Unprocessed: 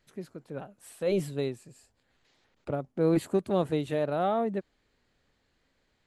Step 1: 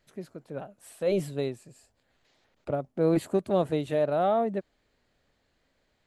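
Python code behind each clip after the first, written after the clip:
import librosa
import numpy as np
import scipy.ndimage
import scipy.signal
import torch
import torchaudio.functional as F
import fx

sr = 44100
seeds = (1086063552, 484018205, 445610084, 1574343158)

y = fx.peak_eq(x, sr, hz=630.0, db=5.0, octaves=0.44)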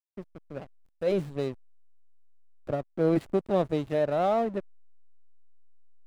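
y = fx.backlash(x, sr, play_db=-33.5)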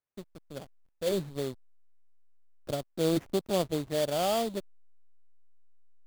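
y = fx.sample_hold(x, sr, seeds[0], rate_hz=4000.0, jitter_pct=20)
y = F.gain(torch.from_numpy(y), -3.0).numpy()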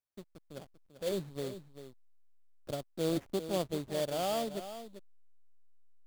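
y = x + 10.0 ** (-11.5 / 20.0) * np.pad(x, (int(392 * sr / 1000.0), 0))[:len(x)]
y = F.gain(torch.from_numpy(y), -5.0).numpy()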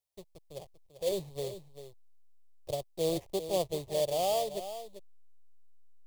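y = fx.fixed_phaser(x, sr, hz=600.0, stages=4)
y = F.gain(torch.from_numpy(y), 4.5).numpy()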